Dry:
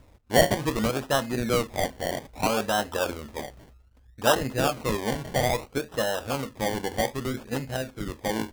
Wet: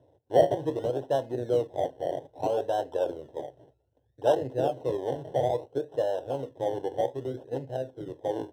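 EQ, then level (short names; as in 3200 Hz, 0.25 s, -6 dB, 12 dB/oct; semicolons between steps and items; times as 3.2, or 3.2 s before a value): running mean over 19 samples; HPF 120 Hz 24 dB/oct; fixed phaser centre 510 Hz, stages 4; +2.0 dB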